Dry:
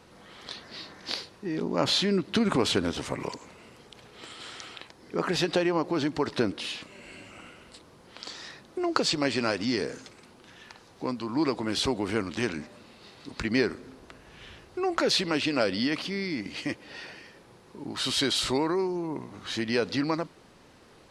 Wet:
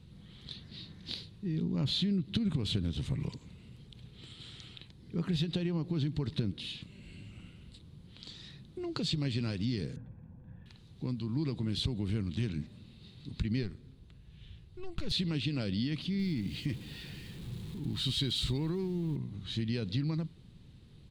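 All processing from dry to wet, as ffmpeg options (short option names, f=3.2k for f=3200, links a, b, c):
-filter_complex "[0:a]asettb=1/sr,asplit=3[a][b][c];[a]atrim=end=9.964[d];[b]atrim=start=9.96:end=10.66,asetpts=PTS-STARTPTS,afade=t=in:d=0.004:c=qsin,afade=t=out:st=0.696:d=0.004:c=qsin,lowpass=f=1.5k:w=0.5412,lowpass=f=1.5k:w=1.3066,equalizer=f=500:t=o:w=0.29:g=13,aecho=1:1:1.2:0.71,atrim=end_sample=30870[e];[c]atrim=start=10.656[f];[d][e]acrossfade=d=0.004:c1=hsin:c2=qsin[g];[g][f]acrossfade=d=0.004:c1=qsin:c2=hsin,asettb=1/sr,asplit=3[h][i][j];[h]atrim=end=13.634[k];[i]atrim=start=13.63:end=15.12,asetpts=PTS-STARTPTS,afade=t=in:d=0.004:c=qsin,afade=t=out:st=1.486:d=0.004:c=qsin,equalizer=f=260:w=1.5:g=-3.5,aeval=exprs='(tanh(8.91*val(0)+0.8)-tanh(0.8))/8.91':c=same[l];[j]atrim=start=15.116[m];[k][l]acrossfade=d=0.004:c1=hsin:c2=qsin[n];[n][m]acrossfade=d=0.004:c1=qsin:c2=hsin,asettb=1/sr,asplit=3[o][p][q];[o]atrim=end=16.194[r];[p]atrim=start=16.19:end=19.16,asetpts=PTS-STARTPTS,afade=t=in:d=0.004:c=qsin,afade=t=out:st=2.966:d=0.004:c=qsin,aeval=exprs='val(0)+0.5*0.0119*sgn(val(0))':c=same,bandreject=f=580:w=11[s];[q]atrim=start=19.156[t];[r][s]acrossfade=d=0.004:c1=hsin:c2=qsin[u];[u][t]acrossfade=d=0.004:c1=qsin:c2=hsin,firequalizer=gain_entry='entry(150,0);entry(260,-14);entry(600,-27);entry(1300,-27);entry(3700,-11);entry(5400,-24);entry(8100,-20)':delay=0.05:min_phase=1,acompressor=threshold=-36dB:ratio=6,volume=8.5dB"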